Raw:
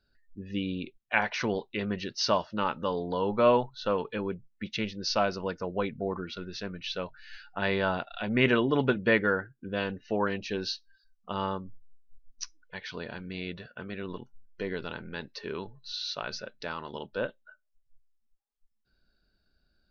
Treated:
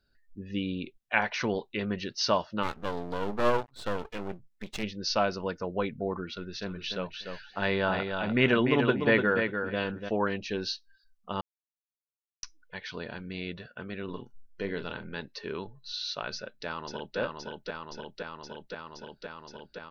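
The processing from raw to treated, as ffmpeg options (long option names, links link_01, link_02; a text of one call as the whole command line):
ffmpeg -i in.wav -filter_complex "[0:a]asplit=3[link_01][link_02][link_03];[link_01]afade=type=out:start_time=2.62:duration=0.02[link_04];[link_02]aeval=exprs='max(val(0),0)':channel_layout=same,afade=type=in:start_time=2.62:duration=0.02,afade=type=out:start_time=4.82:duration=0.02[link_05];[link_03]afade=type=in:start_time=4.82:duration=0.02[link_06];[link_04][link_05][link_06]amix=inputs=3:normalize=0,asplit=3[link_07][link_08][link_09];[link_07]afade=type=out:start_time=6.61:duration=0.02[link_10];[link_08]aecho=1:1:295|590|885:0.501|0.0802|0.0128,afade=type=in:start_time=6.61:duration=0.02,afade=type=out:start_time=10.08:duration=0.02[link_11];[link_09]afade=type=in:start_time=10.08:duration=0.02[link_12];[link_10][link_11][link_12]amix=inputs=3:normalize=0,asettb=1/sr,asplit=3[link_13][link_14][link_15];[link_13]atrim=end=14.044[link_16];[link_14]atrim=start=14.04:end=15.2,asetpts=PTS-STARTPTS,afade=type=in:duration=0.004:curve=qsin,afade=type=out:start_time=1.156:duration=0.004:curve=qsin,asplit=2[link_17][link_18];[link_18]adelay=40,volume=-10dB[link_19];[link_17][link_19]amix=inputs=2:normalize=0,atrim=end_sample=51156[link_20];[link_15]atrim=start=15.196[link_21];[link_16][link_20]acrossfade=duration=0.004:curve1=hsin:curve2=qsin[link_22];[link_22][link_21]acrossfade=duration=0.004:curve1=qsin:curve2=hsin,asplit=2[link_23][link_24];[link_24]afade=type=in:start_time=16.35:duration=0.01,afade=type=out:start_time=17.18:duration=0.01,aecho=0:1:520|1040|1560|2080|2600|3120|3640|4160|4680|5200|5720|6240:0.749894|0.63741|0.541799|0.460529|0.391449|0.332732|0.282822|0.240399|0.204339|0.173688|0.147635|0.12549[link_25];[link_23][link_25]amix=inputs=2:normalize=0,asplit=3[link_26][link_27][link_28];[link_26]atrim=end=11.41,asetpts=PTS-STARTPTS,afade=type=out:start_time=11.406:duration=0.004:curve=hsin[link_29];[link_27]atrim=start=11.41:end=12.43,asetpts=PTS-STARTPTS,volume=0[link_30];[link_28]atrim=start=12.43,asetpts=PTS-STARTPTS,afade=type=in:duration=0.004:curve=hsin[link_31];[link_29][link_30][link_31]concat=n=3:v=0:a=1" out.wav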